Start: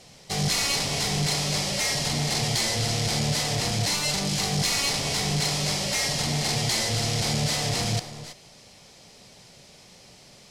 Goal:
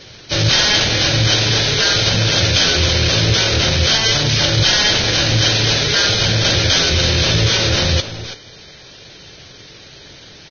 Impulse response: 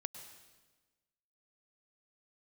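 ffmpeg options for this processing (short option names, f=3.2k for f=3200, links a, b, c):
-af "asetrate=33038,aresample=44100,atempo=1.33484,acontrast=57,volume=4.5dB" -ar 16000 -c:a libvorbis -b:a 16k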